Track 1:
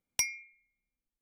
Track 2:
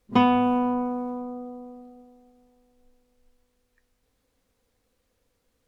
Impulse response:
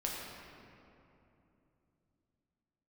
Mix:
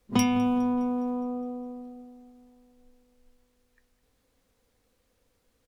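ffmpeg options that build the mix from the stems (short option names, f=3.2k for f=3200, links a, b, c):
-filter_complex "[0:a]volume=-4.5dB,asplit=2[a][b];[b]volume=-22dB[c];[1:a]acrossover=split=240|3000[d][e][f];[e]acompressor=threshold=-32dB:ratio=6[g];[d][g][f]amix=inputs=3:normalize=0,volume=1.5dB,asplit=2[h][i];[i]volume=-19dB[j];[c][j]amix=inputs=2:normalize=0,aecho=0:1:206|412|618|824|1030|1236|1442|1648:1|0.55|0.303|0.166|0.0915|0.0503|0.0277|0.0152[k];[a][h][k]amix=inputs=3:normalize=0"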